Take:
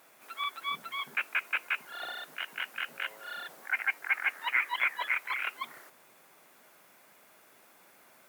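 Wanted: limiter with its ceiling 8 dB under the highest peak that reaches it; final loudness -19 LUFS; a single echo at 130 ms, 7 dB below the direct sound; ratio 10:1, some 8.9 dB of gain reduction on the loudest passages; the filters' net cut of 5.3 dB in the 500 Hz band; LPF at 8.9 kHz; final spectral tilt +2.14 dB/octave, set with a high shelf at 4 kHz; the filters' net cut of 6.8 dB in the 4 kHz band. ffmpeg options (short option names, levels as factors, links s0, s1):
-af "lowpass=8900,equalizer=f=500:t=o:g=-7,highshelf=f=4000:g=-5,equalizer=f=4000:t=o:g=-7,acompressor=threshold=0.0178:ratio=10,alimiter=level_in=2.51:limit=0.0631:level=0:latency=1,volume=0.398,aecho=1:1:130:0.447,volume=15"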